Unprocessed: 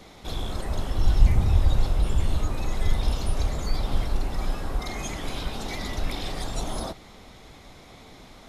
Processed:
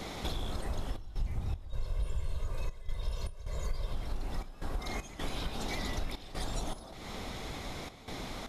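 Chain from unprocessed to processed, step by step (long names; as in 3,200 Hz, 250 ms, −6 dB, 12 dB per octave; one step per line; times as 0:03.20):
0:01.69–0:03.93: comb filter 1.9 ms, depth 92%
downward compressor 5 to 1, threshold −40 dBFS, peak gain reduction 27 dB
gate pattern "xxxxx.xx." 78 BPM −12 dB
level +7 dB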